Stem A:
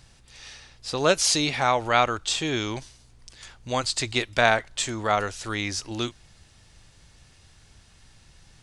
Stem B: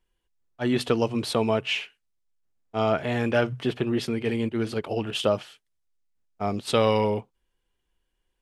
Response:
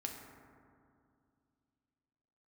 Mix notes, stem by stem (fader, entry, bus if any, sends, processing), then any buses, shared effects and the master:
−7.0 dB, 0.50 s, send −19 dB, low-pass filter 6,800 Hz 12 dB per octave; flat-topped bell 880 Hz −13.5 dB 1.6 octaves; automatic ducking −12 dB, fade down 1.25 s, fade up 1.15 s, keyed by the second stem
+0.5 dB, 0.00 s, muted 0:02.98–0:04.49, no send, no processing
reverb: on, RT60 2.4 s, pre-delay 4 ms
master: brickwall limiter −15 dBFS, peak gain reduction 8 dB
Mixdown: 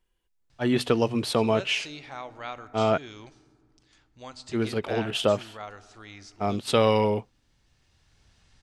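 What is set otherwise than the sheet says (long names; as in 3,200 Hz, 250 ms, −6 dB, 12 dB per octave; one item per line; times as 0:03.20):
stem A: missing flat-topped bell 880 Hz −13.5 dB 1.6 octaves
master: missing brickwall limiter −15 dBFS, peak gain reduction 8 dB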